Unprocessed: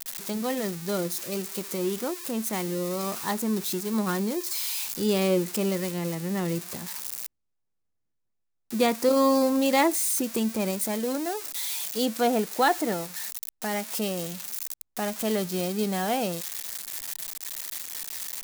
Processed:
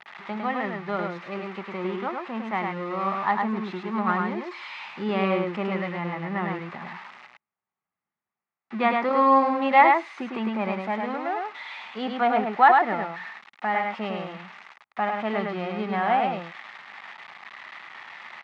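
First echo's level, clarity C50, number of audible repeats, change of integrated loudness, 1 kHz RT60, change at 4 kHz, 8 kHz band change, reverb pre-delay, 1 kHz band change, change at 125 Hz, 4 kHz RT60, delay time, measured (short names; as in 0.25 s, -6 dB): -3.5 dB, none, 1, +2.5 dB, none, -6.5 dB, under -30 dB, none, +9.0 dB, -1.5 dB, none, 0.104 s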